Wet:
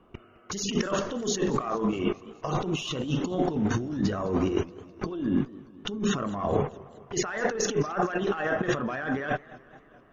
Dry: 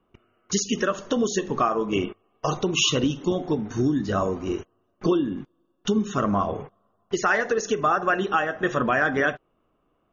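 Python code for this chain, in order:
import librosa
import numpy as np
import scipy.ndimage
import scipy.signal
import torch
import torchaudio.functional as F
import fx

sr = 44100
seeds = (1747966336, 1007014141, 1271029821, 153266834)

y = fx.cheby_harmonics(x, sr, harmonics=(4, 6), levels_db=(-23, -38), full_scale_db=-9.5)
y = fx.over_compress(y, sr, threshold_db=-32.0, ratio=-1.0)
y = fx.high_shelf(y, sr, hz=5800.0, db=-11.0)
y = fx.echo_warbled(y, sr, ms=211, feedback_pct=60, rate_hz=2.8, cents=160, wet_db=-20)
y = F.gain(torch.from_numpy(y), 3.5).numpy()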